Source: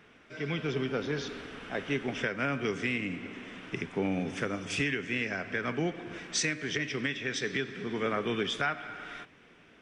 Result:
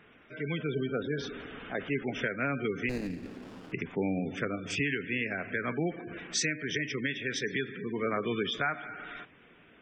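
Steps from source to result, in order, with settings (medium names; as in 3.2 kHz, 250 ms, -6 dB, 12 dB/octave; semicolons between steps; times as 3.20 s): spectral gate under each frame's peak -20 dB strong; 2.89–3.72 s: sliding maximum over 17 samples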